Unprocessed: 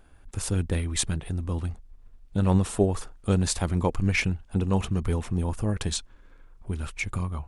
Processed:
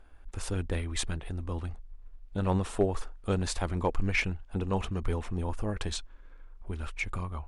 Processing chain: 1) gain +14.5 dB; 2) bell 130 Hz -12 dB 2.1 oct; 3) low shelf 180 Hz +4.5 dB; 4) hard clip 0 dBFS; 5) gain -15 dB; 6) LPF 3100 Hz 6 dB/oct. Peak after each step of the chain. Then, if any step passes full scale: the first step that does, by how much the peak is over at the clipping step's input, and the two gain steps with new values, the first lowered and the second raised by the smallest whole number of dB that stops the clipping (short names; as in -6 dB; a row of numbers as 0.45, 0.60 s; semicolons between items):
+5.5, +3.0, +3.0, 0.0, -15.0, -15.0 dBFS; step 1, 3.0 dB; step 1 +11.5 dB, step 5 -12 dB